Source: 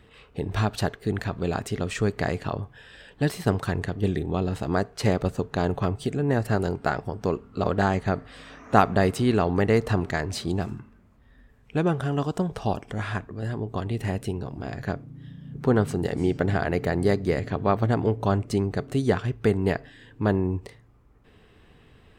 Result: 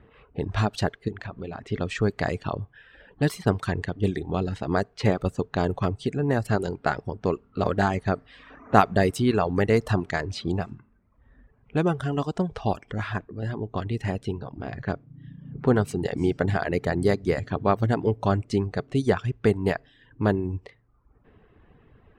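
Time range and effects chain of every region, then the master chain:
1.08–1.63 s: hum notches 60/120/180/240/300/360/420/480 Hz + compression 4:1, threshold -31 dBFS
whole clip: reverb removal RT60 0.76 s; level-controlled noise filter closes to 1.6 kHz, open at -21 dBFS; trim +1 dB

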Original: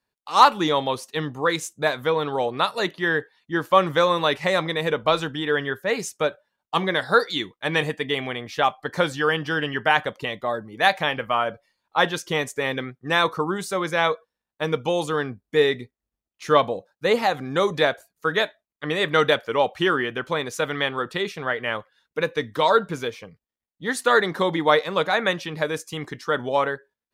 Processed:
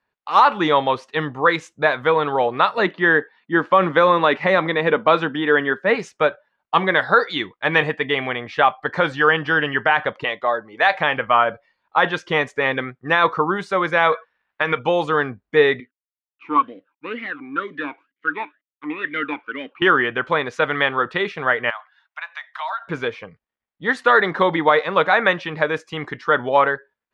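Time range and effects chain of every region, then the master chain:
2.77–5.95 s: resonant high-pass 210 Hz, resonance Q 2 + distance through air 54 m
10.24–10.95 s: low-pass 8.4 kHz + tone controls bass -12 dB, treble +4 dB
14.12–14.79 s: peaking EQ 2 kHz +12.5 dB 2.5 oct + compression 3:1, threshold -22 dBFS
15.80–19.82 s: CVSD coder 64 kbps + peaking EQ 1.2 kHz +8.5 dB 2.8 oct + talking filter i-u 2.1 Hz
21.70–22.88 s: steep high-pass 650 Hz 96 dB/octave + compression 2.5:1, threshold -37 dBFS
whole clip: low-pass 2 kHz 12 dB/octave; tilt shelf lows -5 dB, about 720 Hz; loudness maximiser +8.5 dB; trim -2.5 dB

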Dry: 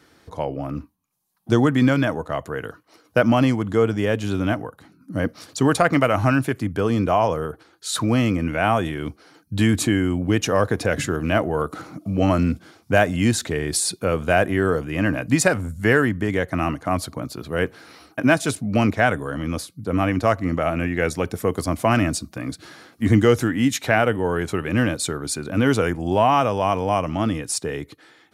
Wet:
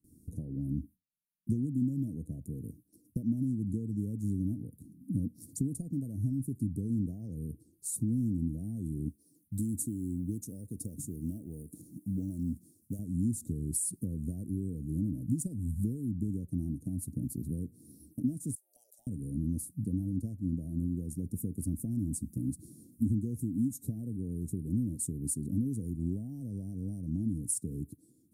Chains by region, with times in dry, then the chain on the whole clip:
9.09–12.99 s: bass shelf 480 Hz -11.5 dB + companded quantiser 8-bit
18.55–19.07 s: frequency shift +130 Hz + steep high-pass 590 Hz 72 dB/octave + compression 2:1, threshold -40 dBFS
whole clip: compression 6:1, threshold -28 dBFS; gate with hold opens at -45 dBFS; elliptic band-stop 250–9100 Hz, stop band 70 dB; trim +2 dB

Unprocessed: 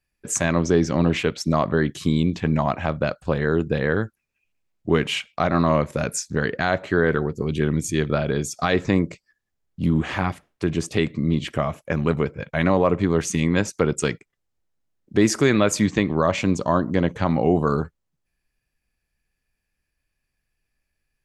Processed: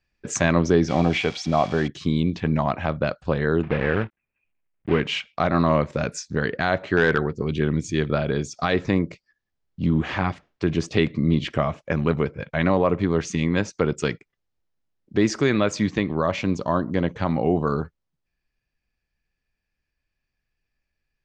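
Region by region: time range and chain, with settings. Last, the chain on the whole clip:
0.88–1.88 s: zero-crossing glitches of -18.5 dBFS + distance through air 61 m + small resonant body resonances 740/2300/3300 Hz, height 12 dB, ringing for 30 ms
3.63–5.00 s: block-companded coder 3-bit + Chebyshev low-pass 2.5 kHz, order 3
6.97–7.57 s: dynamic bell 1.8 kHz, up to +6 dB, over -37 dBFS, Q 0.87 + overload inside the chain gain 9.5 dB
whole clip: low-pass 5.9 kHz 24 dB/octave; gain riding 2 s; trim -1.5 dB

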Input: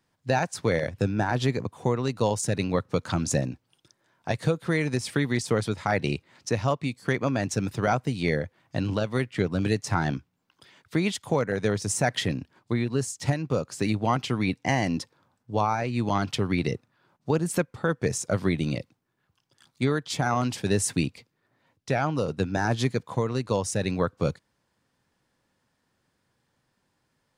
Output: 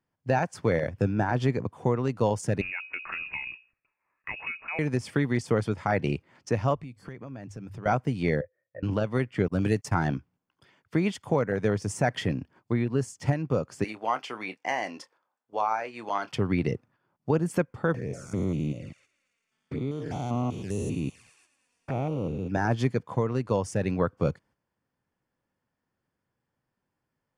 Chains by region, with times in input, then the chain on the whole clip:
2.61–4.79 s: hum notches 60/120/180/240/300/360 Hz + frequency inversion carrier 2.7 kHz + compression 3:1, threshold -28 dBFS
6.75–7.86 s: hum notches 50/100 Hz + compression 3:1, threshold -44 dBFS + bass shelf 120 Hz +9.5 dB
8.41–8.83 s: cascade formant filter e + static phaser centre 870 Hz, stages 6
9.48–10.08 s: gate -37 dBFS, range -29 dB + treble shelf 7.8 kHz +11.5 dB
13.84–16.32 s: high-pass 590 Hz + doubling 27 ms -12.5 dB
17.94–22.52 s: spectrogram pixelated in time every 200 ms + feedback echo behind a high-pass 111 ms, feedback 79%, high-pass 2.1 kHz, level -12.5 dB + touch-sensitive flanger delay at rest 4.9 ms, full sweep at -27.5 dBFS
whole clip: band-stop 3.9 kHz, Q 5.8; gate -55 dBFS, range -8 dB; treble shelf 3.4 kHz -11 dB

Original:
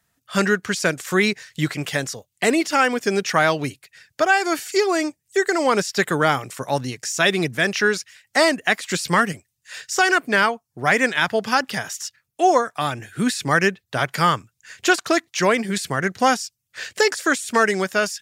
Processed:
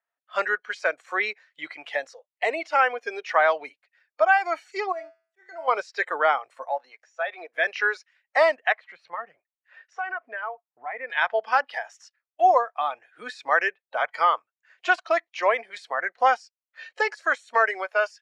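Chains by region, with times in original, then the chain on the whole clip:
4.92–5.68 s: feedback comb 73 Hz, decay 0.48 s, harmonics odd, mix 80% + slow attack 150 ms
6.65–7.54 s: de-esser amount 95% + high-pass 470 Hz
8.72–11.10 s: tone controls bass +5 dB, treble -15 dB + compression 2:1, threshold -31 dBFS
whole clip: Chebyshev high-pass 590 Hz, order 3; spectral noise reduction 12 dB; low-pass 2 kHz 12 dB/octave

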